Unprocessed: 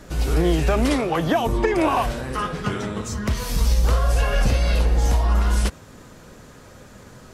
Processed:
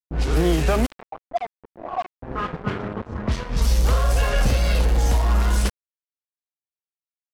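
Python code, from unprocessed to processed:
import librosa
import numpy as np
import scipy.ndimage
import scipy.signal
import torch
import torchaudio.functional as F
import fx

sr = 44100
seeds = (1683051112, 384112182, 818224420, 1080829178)

y = fx.vowel_filter(x, sr, vowel='a', at=(0.85, 2.21), fade=0.02)
y = np.where(np.abs(y) >= 10.0 ** (-26.5 / 20.0), y, 0.0)
y = fx.env_lowpass(y, sr, base_hz=370.0, full_db=-15.0)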